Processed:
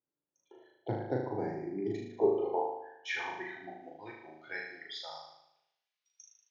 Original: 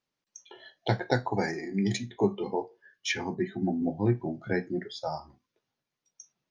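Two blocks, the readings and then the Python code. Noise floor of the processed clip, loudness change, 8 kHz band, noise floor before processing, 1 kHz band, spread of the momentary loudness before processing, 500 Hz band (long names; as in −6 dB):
below −85 dBFS, −5.0 dB, below −10 dB, below −85 dBFS, −4.0 dB, 9 LU, −2.5 dB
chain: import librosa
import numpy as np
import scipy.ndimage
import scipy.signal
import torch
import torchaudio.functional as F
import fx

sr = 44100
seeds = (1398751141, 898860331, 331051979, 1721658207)

y = fx.filter_sweep_bandpass(x, sr, from_hz=250.0, to_hz=3100.0, start_s=1.55, end_s=4.09, q=1.3)
y = fx.peak_eq(y, sr, hz=210.0, db=-13.0, octaves=0.59)
y = fx.room_flutter(y, sr, wall_m=6.5, rt60_s=0.81)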